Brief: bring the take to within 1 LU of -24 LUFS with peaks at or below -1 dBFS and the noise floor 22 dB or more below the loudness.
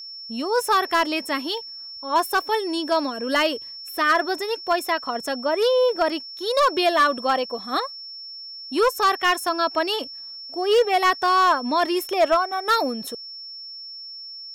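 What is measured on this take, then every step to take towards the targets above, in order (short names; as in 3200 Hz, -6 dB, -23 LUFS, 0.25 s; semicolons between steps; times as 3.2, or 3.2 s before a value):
clipped 0.7%; flat tops at -12.0 dBFS; steady tone 5400 Hz; tone level -35 dBFS; loudness -22.0 LUFS; peak -12.0 dBFS; loudness target -24.0 LUFS
-> clip repair -12 dBFS; notch 5400 Hz, Q 30; gain -2 dB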